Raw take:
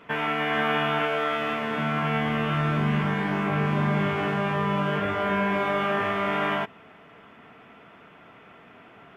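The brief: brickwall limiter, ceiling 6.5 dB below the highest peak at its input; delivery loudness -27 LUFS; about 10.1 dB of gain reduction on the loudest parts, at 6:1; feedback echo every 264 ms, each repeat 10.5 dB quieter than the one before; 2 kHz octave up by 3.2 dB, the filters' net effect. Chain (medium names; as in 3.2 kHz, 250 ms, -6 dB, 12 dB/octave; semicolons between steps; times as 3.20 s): peaking EQ 2 kHz +4 dB; compression 6:1, threshold -31 dBFS; peak limiter -27.5 dBFS; feedback delay 264 ms, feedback 30%, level -10.5 dB; trim +9 dB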